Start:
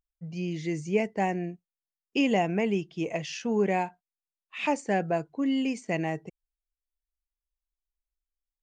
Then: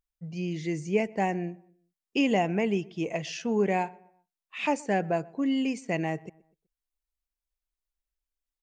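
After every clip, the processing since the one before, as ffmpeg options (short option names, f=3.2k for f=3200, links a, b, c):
-filter_complex "[0:a]asplit=2[a][b];[b]adelay=124,lowpass=f=1.9k:p=1,volume=-23dB,asplit=2[c][d];[d]adelay=124,lowpass=f=1.9k:p=1,volume=0.42,asplit=2[e][f];[f]adelay=124,lowpass=f=1.9k:p=1,volume=0.42[g];[a][c][e][g]amix=inputs=4:normalize=0"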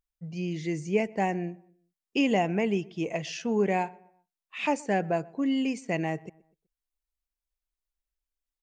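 -af anull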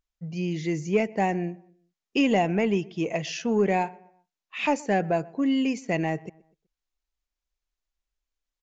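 -filter_complex "[0:a]asplit=2[a][b];[b]asoftclip=type=tanh:threshold=-21.5dB,volume=-6dB[c];[a][c]amix=inputs=2:normalize=0,aresample=16000,aresample=44100"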